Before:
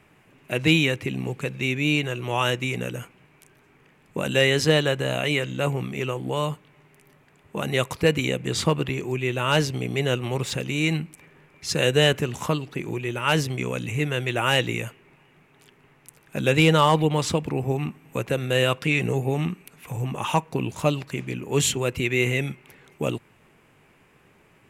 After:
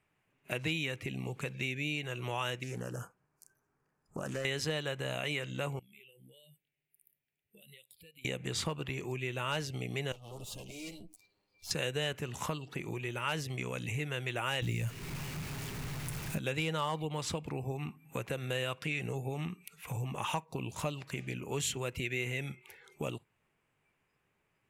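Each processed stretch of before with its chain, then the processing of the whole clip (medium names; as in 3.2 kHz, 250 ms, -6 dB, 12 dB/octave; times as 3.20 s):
2.63–4.45 s: high-order bell 2.8 kHz -13 dB 1.2 oct + compression 2:1, threshold -29 dBFS + loudspeaker Doppler distortion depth 0.27 ms
5.79–8.25 s: pre-emphasis filter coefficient 0.8 + compression 12:1, threshold -46 dBFS + static phaser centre 2.7 kHz, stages 4
10.12–11.71 s: comb filter that takes the minimum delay 9.8 ms + compression 1.5:1, threshold -52 dBFS + peaking EQ 1.7 kHz -11.5 dB 1 oct
14.62–16.38 s: jump at every zero crossing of -37 dBFS + tone controls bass +13 dB, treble +4 dB
whole clip: compression 3:1, threshold -30 dBFS; peaking EQ 280 Hz -4.5 dB 1.9 oct; spectral noise reduction 16 dB; trim -2.5 dB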